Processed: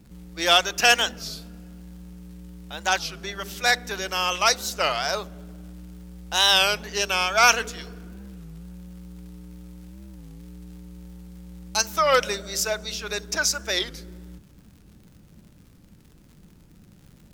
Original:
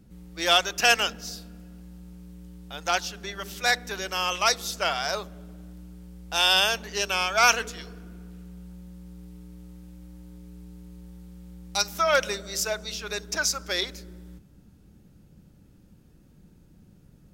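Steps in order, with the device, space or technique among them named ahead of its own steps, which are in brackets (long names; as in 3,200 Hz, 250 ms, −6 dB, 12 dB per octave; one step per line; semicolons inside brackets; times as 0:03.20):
warped LP (wow of a warped record 33 1/3 rpm, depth 160 cents; surface crackle 120 per second −46 dBFS; pink noise bed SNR 42 dB)
level +2.5 dB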